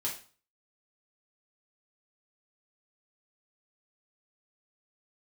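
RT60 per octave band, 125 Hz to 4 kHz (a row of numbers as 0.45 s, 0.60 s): 0.45 s, 0.40 s, 0.40 s, 0.40 s, 0.35 s, 0.35 s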